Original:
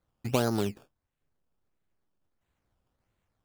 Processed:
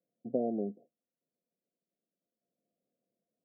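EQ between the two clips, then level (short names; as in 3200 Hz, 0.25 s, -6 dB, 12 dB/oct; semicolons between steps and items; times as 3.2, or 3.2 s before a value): HPF 210 Hz 24 dB/oct; rippled Chebyshev low-pass 720 Hz, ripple 6 dB; 0.0 dB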